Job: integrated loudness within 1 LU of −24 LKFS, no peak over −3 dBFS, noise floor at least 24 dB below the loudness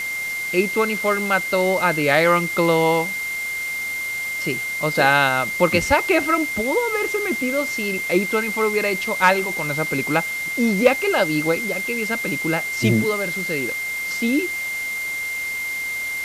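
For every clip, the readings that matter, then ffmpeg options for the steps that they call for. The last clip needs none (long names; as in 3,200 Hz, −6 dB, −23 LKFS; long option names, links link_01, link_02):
interfering tone 2,100 Hz; level of the tone −24 dBFS; background noise floor −27 dBFS; target noise floor −44 dBFS; integrated loudness −20.0 LKFS; sample peak −1.0 dBFS; target loudness −24.0 LKFS
→ -af "bandreject=frequency=2100:width=30"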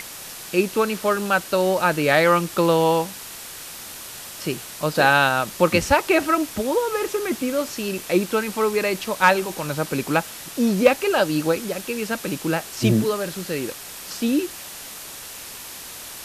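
interfering tone none found; background noise floor −37 dBFS; target noise floor −46 dBFS
→ -af "afftdn=noise_reduction=9:noise_floor=-37"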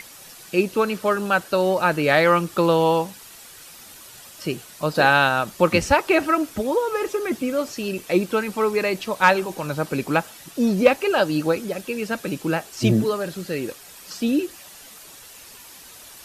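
background noise floor −44 dBFS; target noise floor −46 dBFS
→ -af "afftdn=noise_reduction=6:noise_floor=-44"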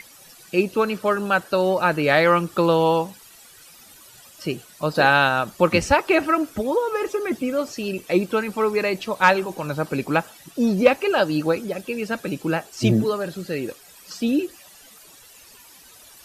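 background noise floor −48 dBFS; integrated loudness −21.5 LKFS; sample peak −2.0 dBFS; target loudness −24.0 LKFS
→ -af "volume=-2.5dB"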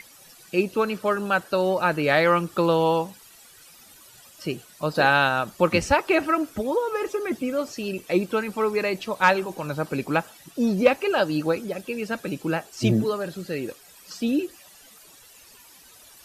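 integrated loudness −24.0 LKFS; sample peak −4.5 dBFS; background noise floor −51 dBFS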